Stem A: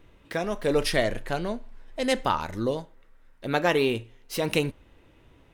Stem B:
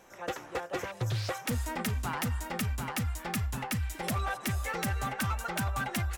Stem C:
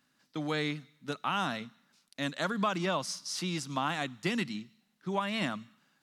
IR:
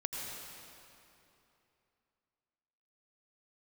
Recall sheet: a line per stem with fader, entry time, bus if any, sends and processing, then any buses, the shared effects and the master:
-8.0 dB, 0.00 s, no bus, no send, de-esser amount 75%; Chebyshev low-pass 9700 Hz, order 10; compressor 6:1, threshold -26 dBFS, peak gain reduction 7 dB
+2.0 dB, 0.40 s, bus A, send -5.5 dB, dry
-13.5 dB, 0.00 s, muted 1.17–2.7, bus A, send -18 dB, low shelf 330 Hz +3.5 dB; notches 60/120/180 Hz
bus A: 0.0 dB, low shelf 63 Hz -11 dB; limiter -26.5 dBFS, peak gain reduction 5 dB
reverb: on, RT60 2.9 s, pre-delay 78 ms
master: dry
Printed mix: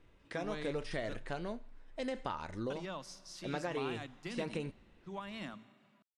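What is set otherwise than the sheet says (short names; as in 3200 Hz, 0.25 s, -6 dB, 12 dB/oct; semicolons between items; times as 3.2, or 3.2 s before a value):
stem B: muted; master: extra high shelf 9400 Hz -5 dB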